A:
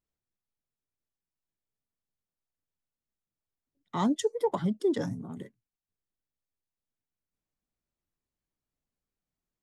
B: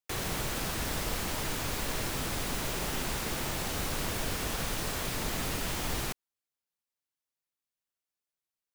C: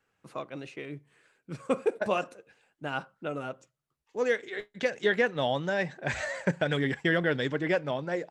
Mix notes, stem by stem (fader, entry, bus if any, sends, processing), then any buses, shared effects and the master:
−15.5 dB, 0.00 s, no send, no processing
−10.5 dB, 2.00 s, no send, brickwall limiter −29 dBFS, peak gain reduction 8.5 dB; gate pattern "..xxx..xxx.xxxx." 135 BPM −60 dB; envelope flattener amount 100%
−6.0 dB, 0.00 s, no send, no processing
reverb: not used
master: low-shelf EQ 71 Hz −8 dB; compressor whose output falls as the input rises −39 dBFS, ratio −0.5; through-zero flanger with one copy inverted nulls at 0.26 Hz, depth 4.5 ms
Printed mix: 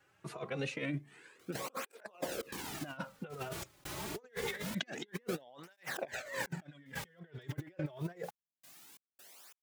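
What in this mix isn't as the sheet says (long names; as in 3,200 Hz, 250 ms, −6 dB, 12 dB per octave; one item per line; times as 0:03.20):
stem A −15.5 dB → −23.0 dB
stem B: entry 2.00 s → 1.30 s
stem C −6.0 dB → +1.0 dB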